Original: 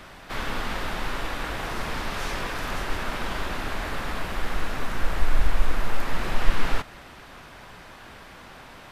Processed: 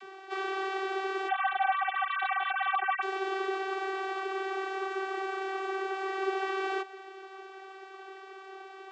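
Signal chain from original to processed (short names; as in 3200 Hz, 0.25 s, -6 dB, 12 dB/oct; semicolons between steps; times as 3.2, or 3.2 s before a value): 1.28–3.02 sine-wave speech; vocoder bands 32, saw 385 Hz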